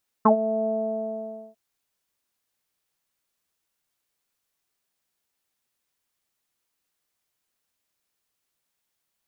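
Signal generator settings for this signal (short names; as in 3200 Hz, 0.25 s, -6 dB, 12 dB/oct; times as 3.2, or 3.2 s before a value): synth note saw A3 24 dB/oct, low-pass 640 Hz, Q 9, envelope 1 oct, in 0.06 s, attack 8.6 ms, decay 0.10 s, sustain -13.5 dB, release 0.89 s, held 0.41 s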